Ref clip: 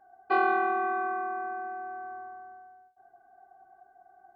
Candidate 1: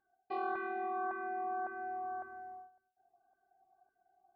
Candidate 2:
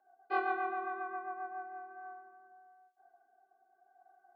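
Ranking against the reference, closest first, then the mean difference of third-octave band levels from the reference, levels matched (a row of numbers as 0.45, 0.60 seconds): 2, 1; 1.5, 2.5 decibels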